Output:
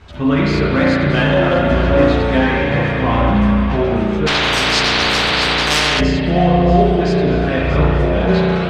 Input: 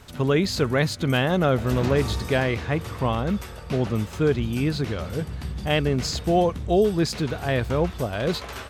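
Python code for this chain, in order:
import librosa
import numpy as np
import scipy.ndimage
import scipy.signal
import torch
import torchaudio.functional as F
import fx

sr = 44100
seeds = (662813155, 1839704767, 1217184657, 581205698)

p1 = scipy.signal.sosfilt(scipy.signal.butter(2, 3800.0, 'lowpass', fs=sr, output='sos'), x)
p2 = fx.peak_eq(p1, sr, hz=460.0, db=-4.0, octaves=0.32)
p3 = fx.rev_spring(p2, sr, rt60_s=2.8, pass_ms=(34,), chirp_ms=60, drr_db=-5.0)
p4 = 10.0 ** (-20.0 / 20.0) * np.tanh(p3 / 10.0 ** (-20.0 / 20.0))
p5 = p3 + (p4 * librosa.db_to_amplitude(-6.0))
p6 = fx.chorus_voices(p5, sr, voices=4, hz=0.43, base_ms=13, depth_ms=2.5, mix_pct=50)
p7 = p6 + fx.echo_feedback(p6, sr, ms=632, feedback_pct=58, wet_db=-12.5, dry=0)
p8 = fx.transient(p7, sr, attack_db=-9, sustain_db=-5, at=(1.24, 1.7))
p9 = fx.spectral_comp(p8, sr, ratio=10.0, at=(4.26, 5.99), fade=0.02)
y = p9 * librosa.db_to_amplitude(4.5)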